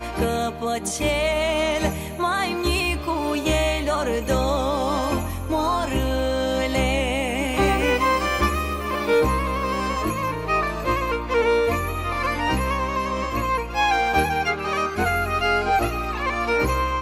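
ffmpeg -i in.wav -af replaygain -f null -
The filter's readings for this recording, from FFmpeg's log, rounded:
track_gain = +4.0 dB
track_peak = 0.234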